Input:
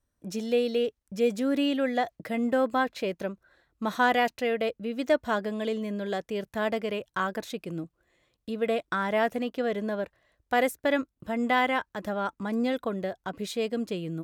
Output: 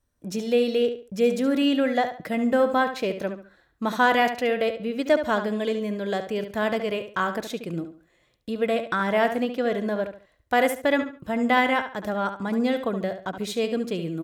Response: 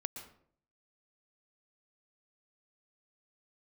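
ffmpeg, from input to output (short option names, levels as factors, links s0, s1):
-filter_complex "[0:a]asplit=2[s0][s1];[s1]adelay=71,lowpass=f=5000:p=1,volume=0.355,asplit=2[s2][s3];[s3]adelay=71,lowpass=f=5000:p=1,volume=0.3,asplit=2[s4][s5];[s5]adelay=71,lowpass=f=5000:p=1,volume=0.3[s6];[s0][s2][s4][s6]amix=inputs=4:normalize=0,volume=1.5"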